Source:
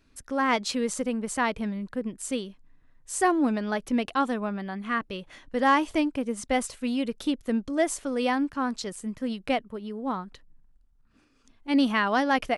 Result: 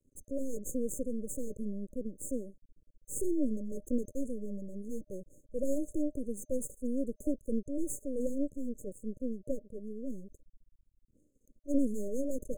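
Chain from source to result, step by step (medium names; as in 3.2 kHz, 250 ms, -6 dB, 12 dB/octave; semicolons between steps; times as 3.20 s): 8.58–9.69 s: treble shelf 2.7 kHz -8.5 dB; half-wave rectifier; FFT band-reject 610–6300 Hz; trim -1 dB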